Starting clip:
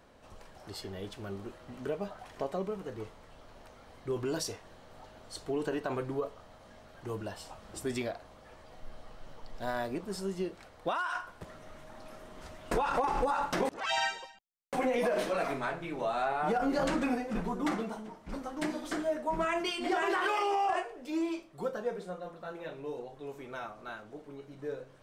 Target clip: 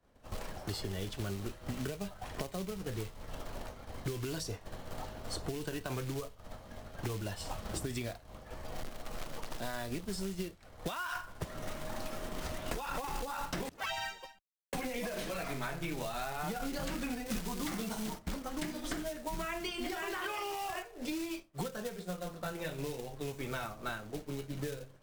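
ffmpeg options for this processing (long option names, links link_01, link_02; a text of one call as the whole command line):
ffmpeg -i in.wav -filter_complex "[0:a]lowshelf=frequency=180:gain=8.5,acompressor=threshold=-41dB:ratio=6,acrusher=bits=4:mode=log:mix=0:aa=0.000001,asettb=1/sr,asplit=3[link_01][link_02][link_03];[link_01]atrim=end=17.264[link_04];[link_02]atrim=start=17.26:end=18.19,asetpts=PTS-STARTPTS,afade=type=in:duration=0.004:curve=qsin,afade=type=out:start_time=0.926:duration=0.004:curve=qsin,highshelf=frequency=2000:gain=9.5[link_05];[link_03]atrim=start=18.186[link_06];[link_04][link_05]acrossfade=duration=0.004:curve1=hsin:curve2=qsin[link_07];[link_07][link_06]acrossfade=duration=0.004:curve1=qsin:curve2=hsin,agate=range=-33dB:threshold=-41dB:ratio=3:detection=peak,acrossover=split=160|1800[link_08][link_09][link_10];[link_08]acompressor=threshold=-54dB:ratio=4[link_11];[link_09]acompressor=threshold=-55dB:ratio=4[link_12];[link_10]acompressor=threshold=-55dB:ratio=4[link_13];[link_11][link_12][link_13]amix=inputs=3:normalize=0,volume=14.5dB" -ar 48000 -c:a libvorbis -b:a 128k out.ogg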